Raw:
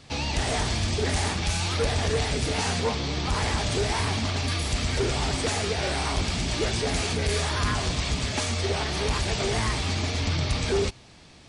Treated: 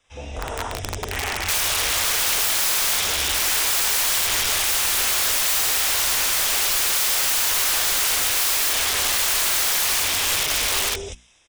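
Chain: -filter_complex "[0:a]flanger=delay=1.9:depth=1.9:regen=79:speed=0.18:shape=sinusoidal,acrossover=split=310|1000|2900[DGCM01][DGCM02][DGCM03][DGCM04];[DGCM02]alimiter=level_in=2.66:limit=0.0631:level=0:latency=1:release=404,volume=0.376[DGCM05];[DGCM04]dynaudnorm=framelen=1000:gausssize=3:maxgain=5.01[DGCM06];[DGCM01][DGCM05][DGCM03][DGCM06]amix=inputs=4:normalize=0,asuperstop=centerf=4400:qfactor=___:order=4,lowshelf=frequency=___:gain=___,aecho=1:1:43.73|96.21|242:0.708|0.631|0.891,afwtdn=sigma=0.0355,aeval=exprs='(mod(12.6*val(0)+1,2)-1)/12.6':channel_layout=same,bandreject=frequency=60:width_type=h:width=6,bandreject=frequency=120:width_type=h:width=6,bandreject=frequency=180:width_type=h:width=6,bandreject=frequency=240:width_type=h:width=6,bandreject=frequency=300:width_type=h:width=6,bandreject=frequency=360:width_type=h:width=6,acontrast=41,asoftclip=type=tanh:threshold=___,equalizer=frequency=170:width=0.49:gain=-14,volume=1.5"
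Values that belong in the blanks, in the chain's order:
3.1, 98, -5, 0.112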